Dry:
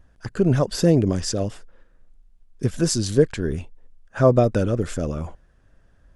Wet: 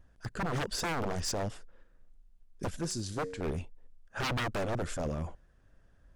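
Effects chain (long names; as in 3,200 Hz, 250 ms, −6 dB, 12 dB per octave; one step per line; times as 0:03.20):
0:02.76–0:03.41: tuned comb filter 92 Hz, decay 0.8 s, harmonics all, mix 60%
wave folding −21 dBFS
level −6 dB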